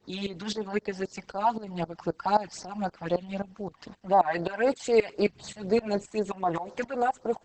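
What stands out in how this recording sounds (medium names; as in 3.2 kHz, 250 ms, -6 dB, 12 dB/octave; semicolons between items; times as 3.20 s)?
tremolo saw up 3.8 Hz, depth 90%; phasing stages 12, 3.9 Hz, lowest notch 390–2900 Hz; Opus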